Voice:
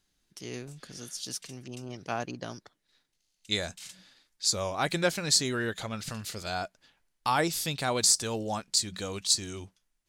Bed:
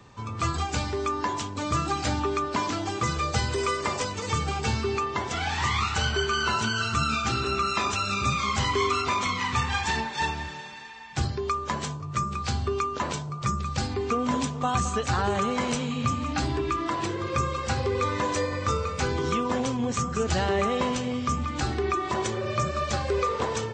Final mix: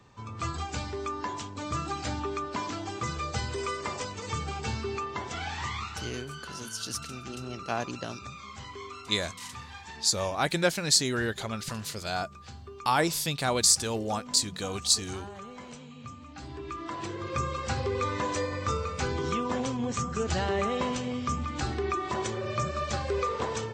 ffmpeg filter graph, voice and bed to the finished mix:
-filter_complex "[0:a]adelay=5600,volume=1.19[s0];[1:a]volume=2.51,afade=t=out:st=5.41:d=0.84:silence=0.266073,afade=t=in:st=16.36:d=1.17:silence=0.199526[s1];[s0][s1]amix=inputs=2:normalize=0"

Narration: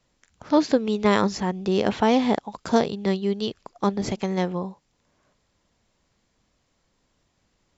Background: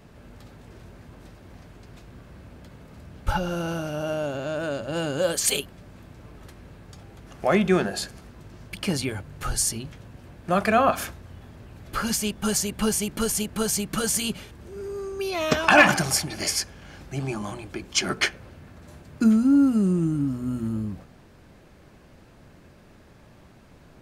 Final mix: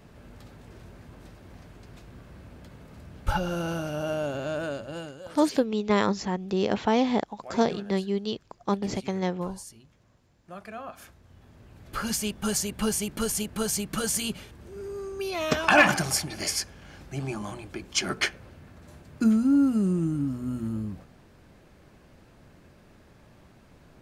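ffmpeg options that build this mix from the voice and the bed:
-filter_complex "[0:a]adelay=4850,volume=0.668[s0];[1:a]volume=5.96,afade=t=out:st=4.54:d=0.66:silence=0.11885,afade=t=in:st=10.93:d=1.24:silence=0.141254[s1];[s0][s1]amix=inputs=2:normalize=0"

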